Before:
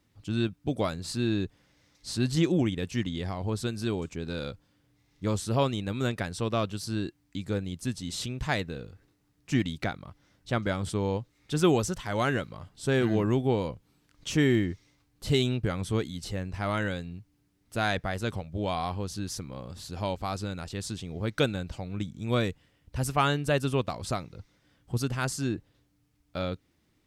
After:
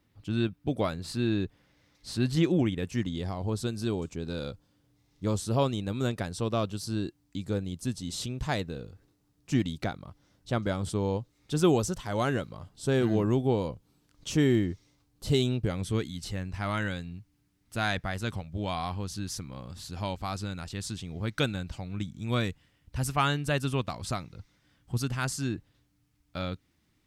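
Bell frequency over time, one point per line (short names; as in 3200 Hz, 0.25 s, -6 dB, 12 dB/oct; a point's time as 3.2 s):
bell -5.5 dB 1.2 oct
2.66 s 7000 Hz
3.16 s 2000 Hz
15.56 s 2000 Hz
16.14 s 480 Hz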